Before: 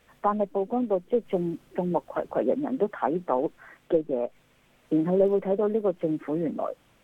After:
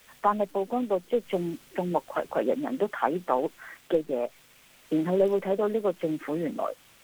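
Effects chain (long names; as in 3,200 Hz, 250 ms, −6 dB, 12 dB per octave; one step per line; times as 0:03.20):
tilt shelving filter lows −6.5 dB, about 1,300 Hz
bit-depth reduction 10 bits, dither none
level +3.5 dB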